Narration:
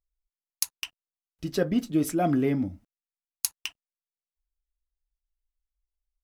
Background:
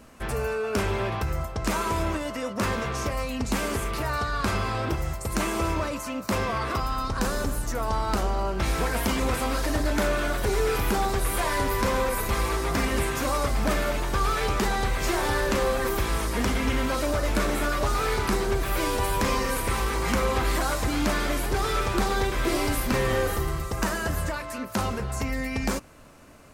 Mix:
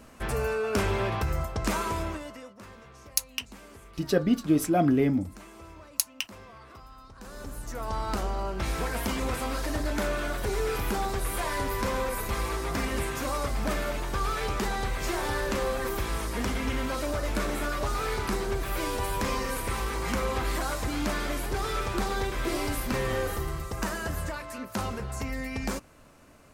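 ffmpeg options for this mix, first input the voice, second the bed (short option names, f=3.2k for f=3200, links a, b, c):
-filter_complex "[0:a]adelay=2550,volume=1.5dB[a];[1:a]volume=16dB,afade=t=out:st=1.57:d=1:silence=0.0944061,afade=t=in:st=7.2:d=0.81:silence=0.149624[b];[a][b]amix=inputs=2:normalize=0"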